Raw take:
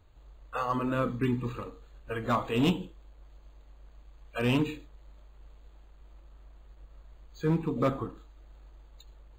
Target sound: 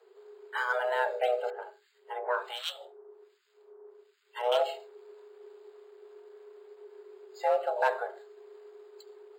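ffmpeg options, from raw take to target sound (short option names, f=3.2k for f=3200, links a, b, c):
-filter_complex "[0:a]asettb=1/sr,asplit=3[a][b][c];[a]atrim=end=1.504[d];[b]atrim=start=1.5:end=4.52,asetpts=PTS-STARTPTS,afade=t=in:d=0.004:c=qsin,afade=t=out:st=3.016:d=0.004:c=qsin,acrossover=split=1100[e][f];[e]aeval=exprs='val(0)*(1-1/2+1/2*cos(2*PI*1.3*n/s))':c=same[g];[f]aeval=exprs='val(0)*(1-1/2-1/2*cos(2*PI*1.3*n/s))':c=same[h];[g][h]amix=inputs=2:normalize=0[i];[c]atrim=start=4.516[j];[d][i]acrossfade=d=0.004:c1=hsin:c2=qsin[k];[k][j]acrossfade=d=0.004:c1=qsin:c2=hsin,afreqshift=370"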